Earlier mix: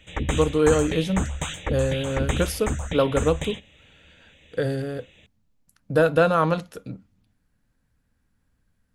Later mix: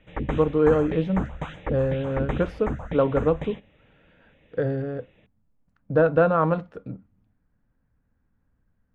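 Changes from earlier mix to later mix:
background: add parametric band 75 Hz −11.5 dB 0.38 octaves
master: add low-pass filter 1,500 Hz 12 dB per octave

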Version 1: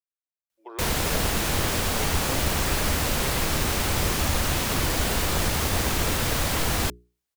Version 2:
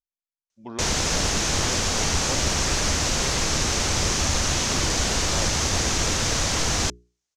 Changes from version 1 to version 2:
speech: remove Chebyshev high-pass with heavy ripple 310 Hz, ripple 3 dB
master: add low-pass with resonance 6,300 Hz, resonance Q 3.2

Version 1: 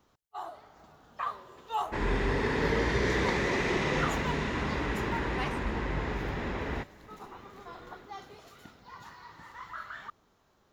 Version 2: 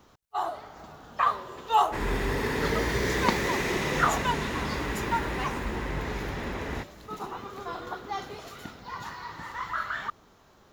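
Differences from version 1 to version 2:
first sound +10.0 dB
second sound: remove high-frequency loss of the air 91 metres

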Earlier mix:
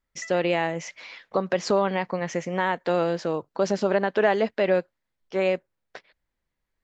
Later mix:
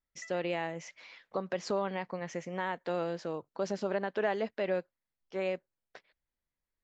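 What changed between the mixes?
speech −10.0 dB
background −9.0 dB

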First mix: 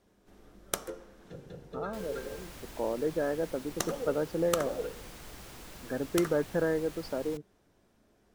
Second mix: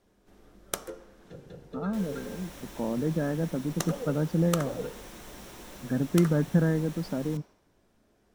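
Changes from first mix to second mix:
speech: add low shelf with overshoot 290 Hz +12 dB, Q 1.5
second sound: send on

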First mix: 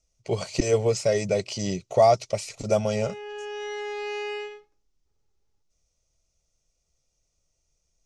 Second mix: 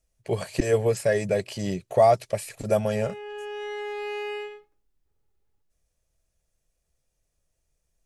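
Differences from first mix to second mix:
speech: remove Butterworth band-reject 1,700 Hz, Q 5.3
master: remove low-pass with resonance 6,000 Hz, resonance Q 3.2

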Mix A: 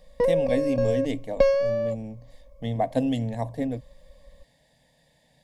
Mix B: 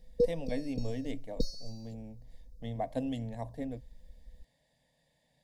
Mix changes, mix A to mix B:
speech −10.0 dB
background: add linear-phase brick-wall band-stop 500–3,600 Hz

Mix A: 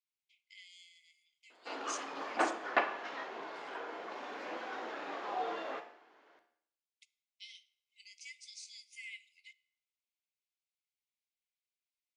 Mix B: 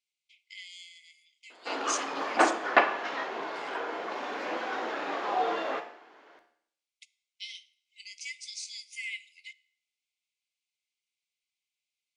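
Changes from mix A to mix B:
speech +10.0 dB
background +8.5 dB

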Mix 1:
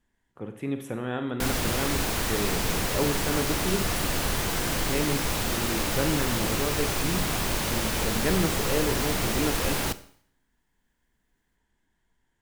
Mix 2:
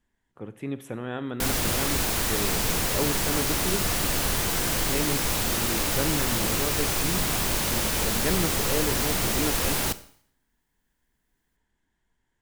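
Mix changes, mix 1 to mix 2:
speech: send −8.5 dB
background: add high-shelf EQ 5,000 Hz +5.5 dB

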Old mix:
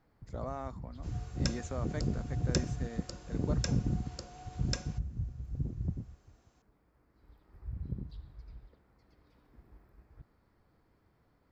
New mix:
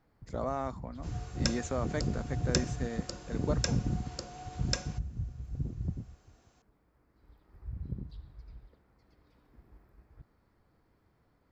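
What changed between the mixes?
speech +6.0 dB
second sound +4.5 dB

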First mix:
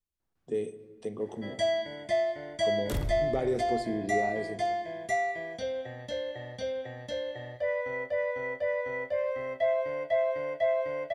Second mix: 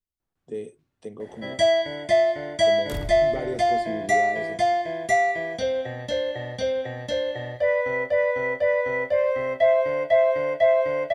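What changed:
speech: send off
first sound +8.5 dB

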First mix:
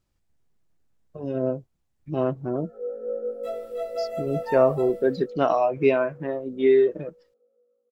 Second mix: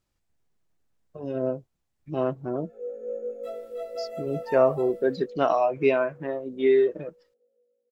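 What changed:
first sound: remove low-pass with resonance 1,200 Hz, resonance Q 11
second sound −4.5 dB
master: add low-shelf EQ 320 Hz −5 dB

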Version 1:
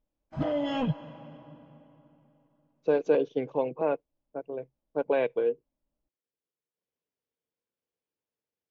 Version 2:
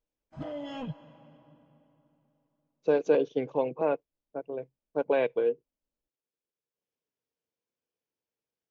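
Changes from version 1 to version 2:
background −9.0 dB
master: remove high-frequency loss of the air 67 metres

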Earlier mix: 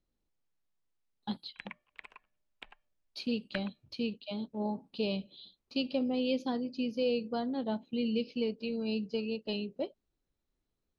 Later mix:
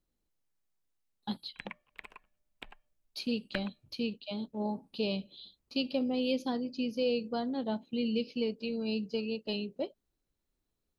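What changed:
background: add low-shelf EQ 500 Hz +9 dB
master: remove high-frequency loss of the air 63 metres

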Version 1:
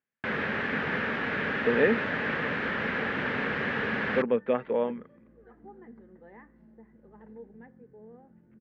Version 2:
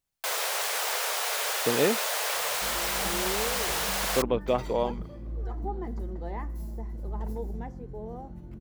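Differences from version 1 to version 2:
first sound: add Butterworth high-pass 460 Hz 48 dB per octave
second sound +11.0 dB
master: remove loudspeaker in its box 190–2,500 Hz, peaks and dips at 230 Hz +6 dB, 330 Hz −6 dB, 470 Hz +4 dB, 700 Hz −7 dB, 1,000 Hz −5 dB, 1,700 Hz +9 dB

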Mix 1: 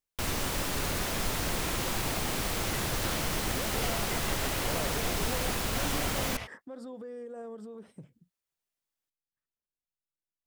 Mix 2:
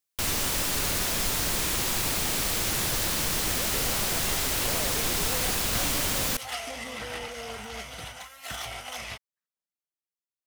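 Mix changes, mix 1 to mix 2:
speech: add high-pass filter 200 Hz
second sound: entry +2.70 s
master: add high-shelf EQ 2,500 Hz +8.5 dB

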